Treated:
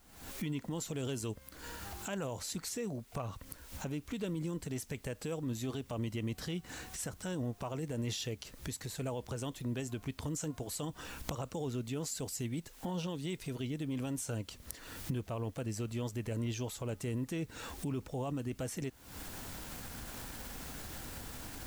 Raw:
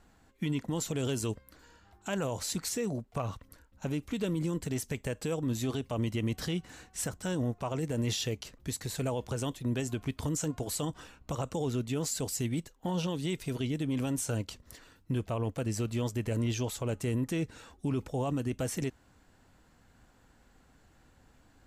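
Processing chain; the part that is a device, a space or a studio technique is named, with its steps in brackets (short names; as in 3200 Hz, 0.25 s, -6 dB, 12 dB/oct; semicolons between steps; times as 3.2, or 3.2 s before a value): cheap recorder with automatic gain (white noise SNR 30 dB; recorder AGC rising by 71 dB/s); gain -5.5 dB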